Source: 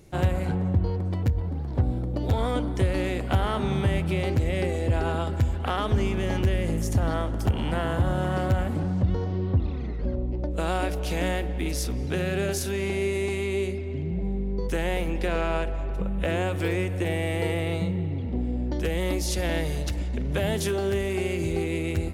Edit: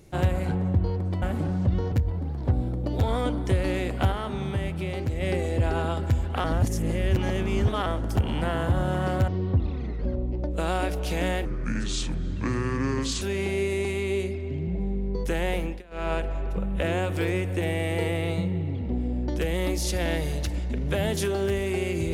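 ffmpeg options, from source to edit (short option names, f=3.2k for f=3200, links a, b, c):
-filter_complex "[0:a]asplit=12[a][b][c][d][e][f][g][h][i][j][k][l];[a]atrim=end=1.222[m];[b]atrim=start=8.578:end=9.282[n];[c]atrim=start=1.218:end=3.422[o];[d]atrim=start=3.418:end=4.512,asetpts=PTS-STARTPTS,volume=-4.5dB[p];[e]atrim=start=4.508:end=5.742[q];[f]atrim=start=5.738:end=7.162,asetpts=PTS-STARTPTS,areverse[r];[g]atrim=start=7.158:end=8.582[s];[h]atrim=start=9.278:end=11.454[t];[i]atrim=start=11.45:end=12.65,asetpts=PTS-STARTPTS,asetrate=29988,aresample=44100[u];[j]atrim=start=12.646:end=15.26,asetpts=PTS-STARTPTS,afade=t=out:st=2.344:d=0.27:c=qsin:silence=0.0630957[v];[k]atrim=start=15.26:end=15.34,asetpts=PTS-STARTPTS,volume=-24dB[w];[l]atrim=start=15.34,asetpts=PTS-STARTPTS,afade=t=in:d=0.27:c=qsin:silence=0.0630957[x];[m][n]acrossfade=d=0.004:c1=hsin:c2=hsin[y];[y][o]acrossfade=d=0.004:c1=hsin:c2=hsin[z];[z][p]acrossfade=d=0.004:c1=hsin:c2=hsin[aa];[aa][q]acrossfade=d=0.004:c1=hsin:c2=hsin[ab];[ab][r]acrossfade=d=0.004:c1=hsin:c2=hsin[ac];[ac][s]acrossfade=d=0.004:c1=hsin:c2=hsin[ad];[ad][t]acrossfade=d=0.004:c1=hsin:c2=hsin[ae];[ae][u]acrossfade=d=0.004:c1=hsin:c2=hsin[af];[v][w][x]concat=n=3:v=0:a=1[ag];[af][ag]acrossfade=d=0.004:c1=hsin:c2=hsin"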